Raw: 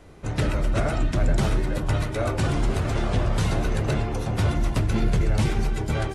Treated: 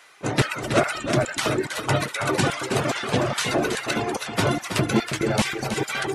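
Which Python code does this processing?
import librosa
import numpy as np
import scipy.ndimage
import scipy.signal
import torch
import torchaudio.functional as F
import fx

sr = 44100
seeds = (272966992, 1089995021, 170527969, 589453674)

p1 = fx.dereverb_blind(x, sr, rt60_s=1.2)
p2 = fx.peak_eq(p1, sr, hz=130.0, db=14.5, octaves=0.26)
p3 = fx.filter_lfo_highpass(p2, sr, shape='square', hz=2.4, low_hz=290.0, high_hz=1500.0, q=0.93)
p4 = p3 + fx.echo_single(p3, sr, ms=323, db=-8.0, dry=0)
y = p4 * librosa.db_to_amplitude(9.0)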